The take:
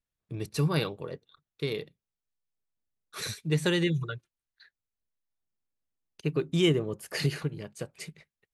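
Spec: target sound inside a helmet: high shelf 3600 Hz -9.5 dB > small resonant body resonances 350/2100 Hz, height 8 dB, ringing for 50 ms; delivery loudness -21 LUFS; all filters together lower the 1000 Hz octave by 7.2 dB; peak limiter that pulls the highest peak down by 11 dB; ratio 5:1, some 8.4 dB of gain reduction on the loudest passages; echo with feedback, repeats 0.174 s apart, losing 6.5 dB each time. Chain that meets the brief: bell 1000 Hz -8.5 dB; compressor 5:1, threshold -30 dBFS; limiter -31.5 dBFS; high shelf 3600 Hz -9.5 dB; feedback echo 0.174 s, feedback 47%, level -6.5 dB; small resonant body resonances 350/2100 Hz, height 8 dB, ringing for 50 ms; gain +18.5 dB

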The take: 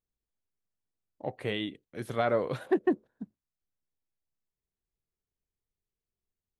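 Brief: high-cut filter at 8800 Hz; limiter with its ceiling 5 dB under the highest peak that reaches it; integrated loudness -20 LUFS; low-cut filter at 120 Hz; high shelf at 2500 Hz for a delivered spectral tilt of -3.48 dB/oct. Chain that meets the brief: HPF 120 Hz; LPF 8800 Hz; high shelf 2500 Hz +7 dB; gain +13 dB; limiter -5 dBFS

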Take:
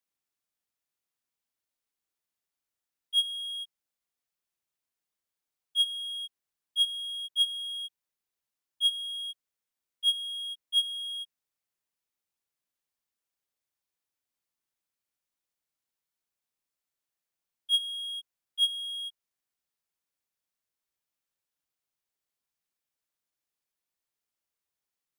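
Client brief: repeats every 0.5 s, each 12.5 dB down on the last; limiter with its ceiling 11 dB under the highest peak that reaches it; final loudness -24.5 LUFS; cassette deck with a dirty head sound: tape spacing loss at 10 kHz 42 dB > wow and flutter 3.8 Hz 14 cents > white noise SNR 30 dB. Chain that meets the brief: limiter -26.5 dBFS; tape spacing loss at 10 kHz 42 dB; feedback echo 0.5 s, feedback 24%, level -12.5 dB; wow and flutter 3.8 Hz 14 cents; white noise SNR 30 dB; gain +24 dB

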